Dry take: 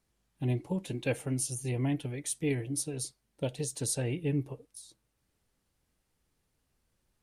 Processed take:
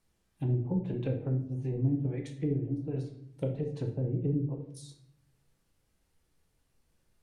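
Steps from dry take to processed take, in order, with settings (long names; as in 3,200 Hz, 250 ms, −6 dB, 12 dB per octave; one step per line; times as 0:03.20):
treble cut that deepens with the level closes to 320 Hz, closed at −28 dBFS
rectangular room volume 130 cubic metres, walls mixed, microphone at 0.63 metres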